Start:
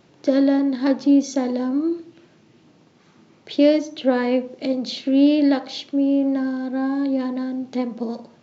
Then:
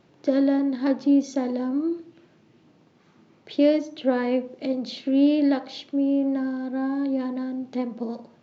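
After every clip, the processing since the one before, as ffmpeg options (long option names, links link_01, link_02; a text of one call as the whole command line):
ffmpeg -i in.wav -af "highshelf=frequency=4900:gain=-8,volume=-3.5dB" out.wav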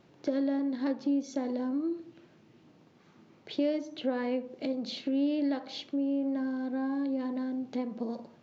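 ffmpeg -i in.wav -af "acompressor=threshold=-30dB:ratio=2,volume=-2dB" out.wav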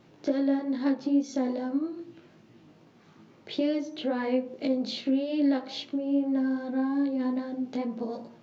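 ffmpeg -i in.wav -af "flanger=delay=17:depth=2.7:speed=2.4,volume=6.5dB" out.wav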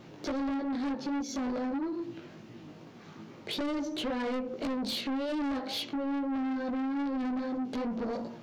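ffmpeg -i in.wav -filter_complex "[0:a]asplit=2[link_01][link_02];[link_02]acompressor=threshold=-33dB:ratio=6,volume=2dB[link_03];[link_01][link_03]amix=inputs=2:normalize=0,asoftclip=type=tanh:threshold=-30dB" out.wav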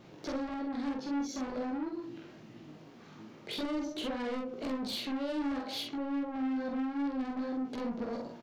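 ffmpeg -i in.wav -filter_complex "[0:a]asplit=2[link_01][link_02];[link_02]adelay=46,volume=-3dB[link_03];[link_01][link_03]amix=inputs=2:normalize=0,volume=-4.5dB" out.wav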